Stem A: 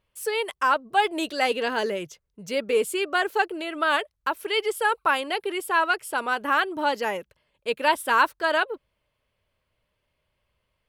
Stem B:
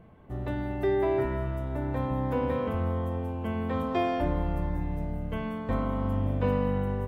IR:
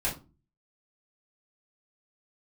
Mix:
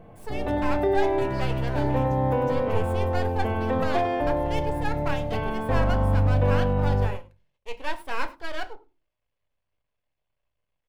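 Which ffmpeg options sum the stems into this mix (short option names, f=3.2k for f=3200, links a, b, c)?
-filter_complex "[0:a]highshelf=f=6k:g=-8,aeval=exprs='max(val(0),0)':c=same,volume=-9dB,asplit=3[a][b][c];[b]volume=-12.5dB[d];[c]volume=-19.5dB[e];[1:a]equalizer=f=540:t=o:w=0.77:g=4.5,bandreject=f=60:t=h:w=6,bandreject=f=120:t=h:w=6,alimiter=limit=-20dB:level=0:latency=1:release=416,volume=2dB,asplit=3[f][g][h];[g]volume=-12.5dB[i];[h]volume=-4.5dB[j];[2:a]atrim=start_sample=2205[k];[d][i]amix=inputs=2:normalize=0[l];[l][k]afir=irnorm=-1:irlink=0[m];[e][j]amix=inputs=2:normalize=0,aecho=0:1:101:1[n];[a][f][m][n]amix=inputs=4:normalize=0,equalizer=f=700:w=2.6:g=3"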